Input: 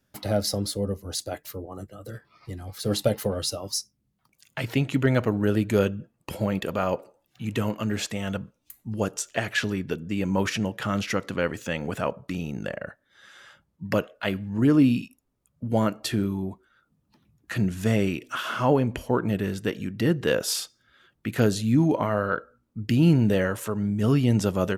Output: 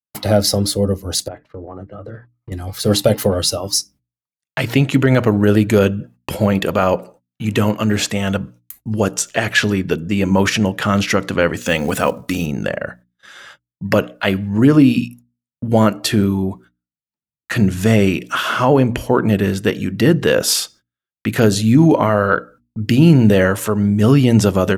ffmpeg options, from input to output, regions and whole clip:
-filter_complex "[0:a]asettb=1/sr,asplit=3[s0][s1][s2];[s0]atrim=end=1.284[s3];[s1]atrim=start=1.28:end=2.52,asetpts=PTS-STARTPTS,afade=t=in:d=0.004:c=qsin,afade=t=out:st=1.236:d=0.004:c=qsin,lowpass=1700,agate=range=0.0224:threshold=0.00126:ratio=3:release=100:detection=peak,acompressor=threshold=0.0126:ratio=6:attack=3.2:release=140:knee=1:detection=peak[s4];[s2]atrim=start=2.516[s5];[s3][s4]acrossfade=d=0.004:c1=hsin:c2=qsin[s6];[s6][s5]acrossfade=d=0.004:c1=qsin:c2=hsin,asettb=1/sr,asplit=3[s7][s8][s9];[s7]atrim=end=11.664[s10];[s8]atrim=start=11.66:end=12.46,asetpts=PTS-STARTPTS,afade=t=in:d=0.004:c=qsin,afade=t=out:st=0.796:d=0.004:c=qsin,highshelf=f=5700:g=11,aecho=1:1:4:0.34,atrim=end_sample=35280,acrusher=bits=7:mode=log:mix=0:aa=0.000001[s11];[s9]atrim=start=12.456[s12];[s10][s11]acrossfade=d=0.004:c1=hsin:c2=qsin[s13];[s13][s12]acrossfade=d=0.004:c1=qsin:c2=hsin,agate=range=0.00562:threshold=0.00282:ratio=16:detection=peak,bandreject=f=60:t=h:w=6,bandreject=f=120:t=h:w=6,bandreject=f=180:t=h:w=6,bandreject=f=240:t=h:w=6,bandreject=f=300:t=h:w=6,alimiter=level_in=3.98:limit=0.891:release=50:level=0:latency=1,volume=0.891"

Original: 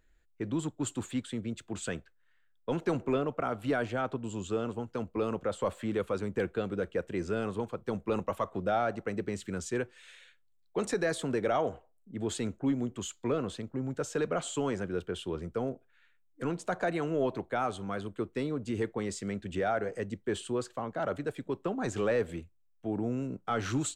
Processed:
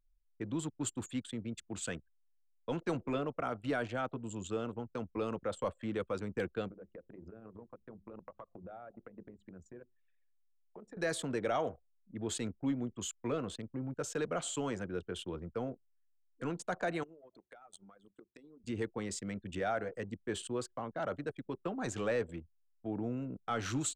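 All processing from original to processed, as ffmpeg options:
-filter_complex "[0:a]asettb=1/sr,asplit=3[s0][s1][s2];[s0]atrim=end=6.684[s3];[s1]atrim=start=6.68:end=10.97,asetpts=PTS-STARTPTS,afade=t=in:d=0.004:c=qsin,afade=t=out:st=4.286:d=0.004:c=qsin,acompressor=threshold=0.0112:ratio=8:attack=3.2:release=140:knee=1:detection=peak,highshelf=f=2700:g=-10,bandreject=f=50:t=h:w=6,bandreject=f=100:t=h:w=6,bandreject=f=150:t=h:w=6,bandreject=f=200:t=h:w=6,bandreject=f=250:t=h:w=6,bandreject=f=300:t=h:w=6,bandreject=f=350:t=h:w=6,bandreject=f=400:t=h:w=6,bandreject=f=450:t=h:w=6[s4];[s2]atrim=start=10.966[s5];[s3][s4]acrossfade=d=0.004:c1=hsin:c2=qsin[s6];[s6][s5]acrossfade=d=0.004:c1=qsin:c2=hsin,asettb=1/sr,asplit=3[s7][s8][s9];[s7]atrim=end=17.034[s10];[s8]atrim=start=17.03:end=18.64,asetpts=PTS-STARTPTS,afade=t=in:d=0.004:c=qsin,afade=t=out:st=1.606:d=0.004:c=qsin,highpass=f=230:p=1,aemphasis=mode=production:type=75fm,acompressor=threshold=0.00631:ratio=8:attack=3.2:release=140:knee=1:detection=peak[s11];[s9]atrim=start=18.636[s12];[s10][s11]acrossfade=d=0.004:c1=hsin:c2=qsin[s13];[s13][s12]acrossfade=d=0.004:c1=qsin:c2=hsin,highshelf=f=2700:g=5,bandreject=f=400:w=12,anlmdn=0.158,volume=0.596"

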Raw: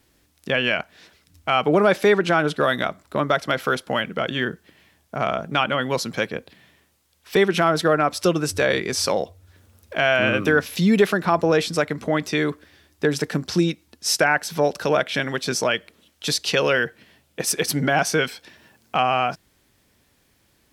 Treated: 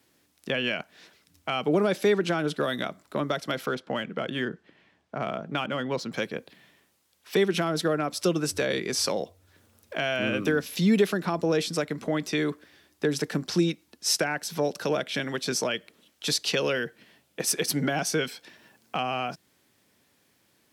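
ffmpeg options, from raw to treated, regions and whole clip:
-filter_complex "[0:a]asettb=1/sr,asplit=3[s0][s1][s2];[s0]atrim=end=3.664[s3];[s1]atrim=start=3.66:end=6.12,asetpts=PTS-STARTPTS,afade=t=in:d=0.004:c=qsin,afade=t=out:st=2.456:d=0.004:c=qsin,aemphasis=mode=reproduction:type=50kf,adynamicsmooth=sensitivity=5.5:basefreq=7700[s4];[s2]atrim=start=6.116[s5];[s3][s4]acrossfade=d=0.004:c1=hsin:c2=qsin[s6];[s6][s5]acrossfade=d=0.004:c1=qsin:c2=hsin,highpass=140,acrossover=split=450|3000[s7][s8][s9];[s8]acompressor=threshold=0.0316:ratio=2.5[s10];[s7][s10][s9]amix=inputs=3:normalize=0,volume=0.708"

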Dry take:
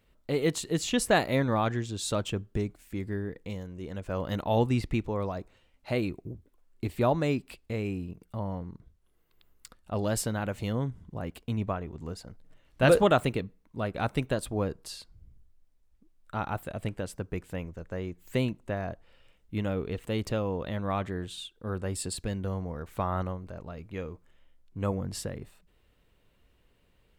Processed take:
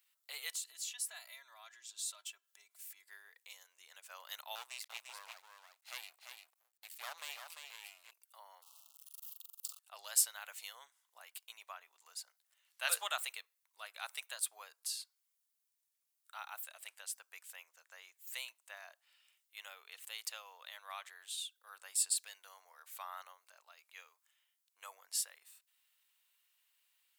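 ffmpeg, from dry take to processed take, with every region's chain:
-filter_complex "[0:a]asettb=1/sr,asplit=3[s0][s1][s2];[s0]atrim=end=0.524[s3];[s1]atrim=start=0.52:end=3.08,asetpts=PTS-STARTPTS,afade=t=in:d=0.004:c=qsin,afade=t=out:st=2.556:d=0.004:c=qsin,aecho=1:1:3:0.76,atrim=end_sample=112896,acompressor=threshold=0.00631:ratio=2.5:attack=3.2:release=140:knee=1:detection=peak[s4];[s2]atrim=start=3.076[s5];[s3][s4]acrossfade=d=0.004:c1=hsin:c2=qsin[s6];[s6][s5]acrossfade=d=0.004:c1=qsin:c2=hsin,asettb=1/sr,asplit=3[s7][s8][s9];[s7]atrim=end=4.554[s10];[s8]atrim=start=4.55:end=8.11,asetpts=PTS-STARTPTS,afade=t=in:d=0.004:c=qsin,afade=t=out:st=3.556:d=0.004:c=qsin,aecho=1:1:345:0.501,atrim=end_sample=156996,aeval=exprs='max(val(0),0)':c=same[s11];[s9]atrim=start=8.106[s12];[s10][s11]acrossfade=d=0.004:c1=hsin:c2=qsin[s13];[s13][s12]acrossfade=d=0.004:c1=qsin:c2=hsin,asettb=1/sr,asplit=3[s14][s15][s16];[s14]atrim=end=8.624[s17];[s15]atrim=start=8.62:end=9.79,asetpts=PTS-STARTPTS,afade=t=in:d=0.004:c=qsin,afade=t=out:st=1.166:d=0.004:c=qsin,aeval=exprs='val(0)+0.5*0.00596*sgn(val(0))':c=same,asuperstop=centerf=1900:order=20:qfactor=1.5,asplit=2[s18][s19];[s19]adelay=42,volume=0.447[s20];[s18][s20]amix=inputs=2:normalize=0,atrim=end_sample=51597[s21];[s16]atrim=start=9.786[s22];[s17][s21]acrossfade=d=0.004:c1=hsin:c2=qsin[s23];[s23][s22]acrossfade=d=0.004:c1=qsin:c2=hsin,highpass=f=750:w=0.5412,highpass=f=750:w=1.3066,aderivative,volume=1.5"

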